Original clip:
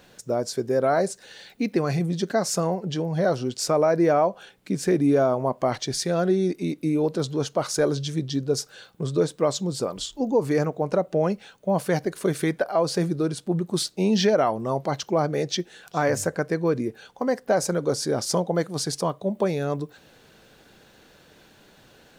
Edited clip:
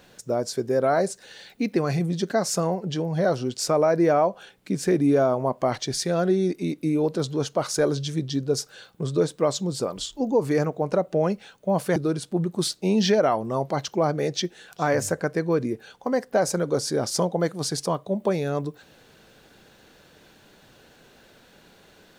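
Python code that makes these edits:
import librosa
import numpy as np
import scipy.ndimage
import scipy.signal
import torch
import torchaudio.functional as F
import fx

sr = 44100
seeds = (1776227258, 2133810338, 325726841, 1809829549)

y = fx.edit(x, sr, fx.cut(start_s=11.96, length_s=1.15), tone=tone)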